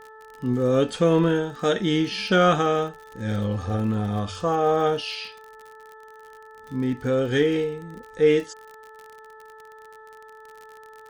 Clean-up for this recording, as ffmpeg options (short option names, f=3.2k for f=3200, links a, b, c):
-af "adeclick=t=4,bandreject=f=437.1:t=h:w=4,bandreject=f=874.2:t=h:w=4,bandreject=f=1.3113k:t=h:w=4,bandreject=f=1.7484k:t=h:w=4"